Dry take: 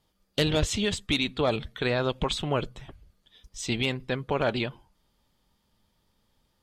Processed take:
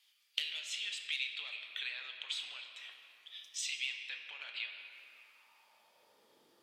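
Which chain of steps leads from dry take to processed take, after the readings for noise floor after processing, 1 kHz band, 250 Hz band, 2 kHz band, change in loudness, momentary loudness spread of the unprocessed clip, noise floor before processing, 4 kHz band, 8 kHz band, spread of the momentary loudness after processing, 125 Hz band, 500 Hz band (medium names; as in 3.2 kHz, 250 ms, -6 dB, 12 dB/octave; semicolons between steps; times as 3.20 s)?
-71 dBFS, -26.0 dB, under -40 dB, -7.0 dB, -11.5 dB, 9 LU, -73 dBFS, -6.5 dB, -7.0 dB, 15 LU, under -40 dB, -39.0 dB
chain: compression 10:1, threshold -40 dBFS, peak gain reduction 20 dB; high-pass sweep 2.5 kHz -> 350 Hz, 4.73–6.37 s; simulated room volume 190 m³, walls hard, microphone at 0.35 m; trim +2.5 dB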